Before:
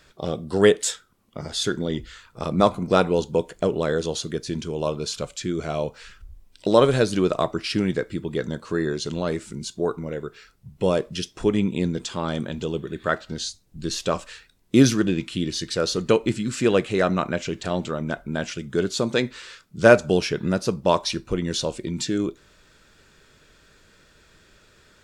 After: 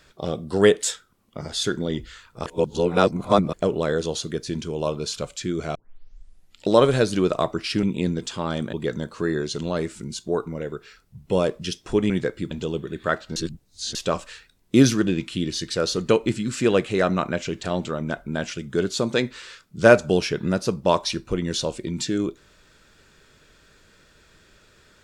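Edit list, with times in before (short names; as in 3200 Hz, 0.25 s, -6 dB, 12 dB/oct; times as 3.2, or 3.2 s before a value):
2.46–3.53 reverse
5.75 tape start 0.93 s
7.83–8.24 swap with 11.61–12.51
13.36–13.95 reverse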